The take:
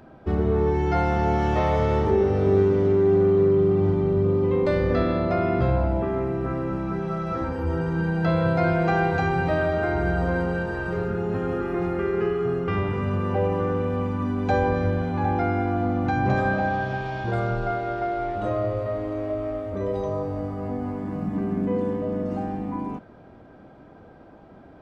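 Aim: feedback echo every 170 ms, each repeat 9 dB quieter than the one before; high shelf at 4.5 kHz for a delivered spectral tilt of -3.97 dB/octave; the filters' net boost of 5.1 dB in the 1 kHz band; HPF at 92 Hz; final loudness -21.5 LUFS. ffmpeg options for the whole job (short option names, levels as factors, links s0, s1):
-af "highpass=92,equalizer=f=1000:t=o:g=7.5,highshelf=f=4500:g=-5,aecho=1:1:170|340|510|680:0.355|0.124|0.0435|0.0152,volume=1.06"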